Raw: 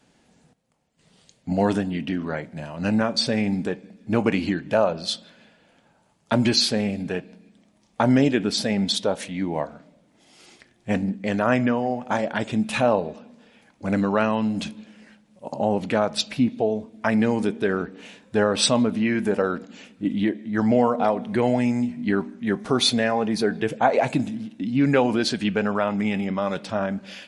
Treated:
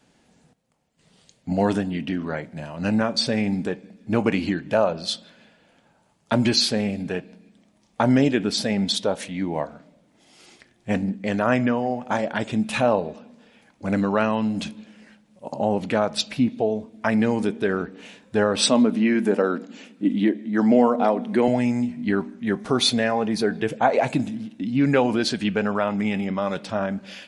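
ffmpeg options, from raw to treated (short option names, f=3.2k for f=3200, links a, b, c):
-filter_complex "[0:a]asettb=1/sr,asplit=3[a][b][c];[a]atrim=end=18.614[d];[b]atrim=start=18.61:end=21.48,asetpts=PTS-STARTPTS,afade=t=in:d=0.004:c=qsin,afade=t=out:st=2.866:d=0.004:c=qsin,highpass=f=240:t=q:w=1.5[e];[c]atrim=start=21.476[f];[d][e]acrossfade=d=0.004:c1=hsin:c2=qsin[g];[g][f]acrossfade=d=0.004:c1=qsin:c2=hsin"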